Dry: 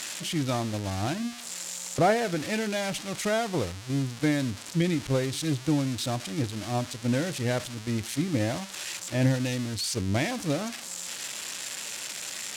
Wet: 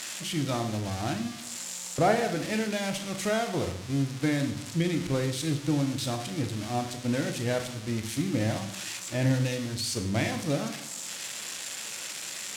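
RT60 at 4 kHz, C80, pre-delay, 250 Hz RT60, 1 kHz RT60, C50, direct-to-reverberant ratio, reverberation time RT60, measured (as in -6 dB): 0.65 s, 12.0 dB, 14 ms, 0.95 s, 0.70 s, 9.5 dB, 5.5 dB, 0.75 s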